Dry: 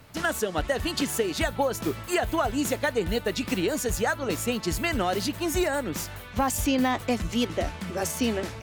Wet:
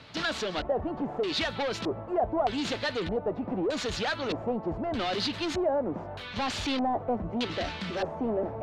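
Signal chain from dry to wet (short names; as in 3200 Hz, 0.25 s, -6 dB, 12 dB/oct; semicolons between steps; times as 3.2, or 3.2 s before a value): tracing distortion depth 0.069 ms; HPF 140 Hz 6 dB/oct; reverse; upward compressor, threshold -36 dBFS; reverse; soft clip -29.5 dBFS, distortion -8 dB; LFO low-pass square 0.81 Hz 710–4000 Hz; gain +2 dB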